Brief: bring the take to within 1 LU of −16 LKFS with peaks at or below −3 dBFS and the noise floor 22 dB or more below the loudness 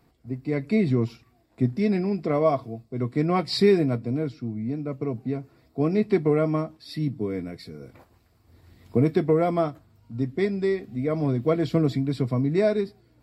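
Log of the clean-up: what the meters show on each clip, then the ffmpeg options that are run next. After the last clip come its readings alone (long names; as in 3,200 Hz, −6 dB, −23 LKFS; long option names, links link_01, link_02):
integrated loudness −25.0 LKFS; sample peak −8.5 dBFS; target loudness −16.0 LKFS
→ -af "volume=9dB,alimiter=limit=-3dB:level=0:latency=1"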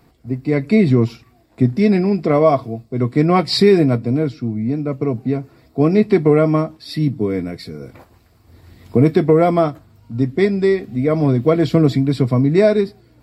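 integrated loudness −16.5 LKFS; sample peak −3.0 dBFS; background noise floor −54 dBFS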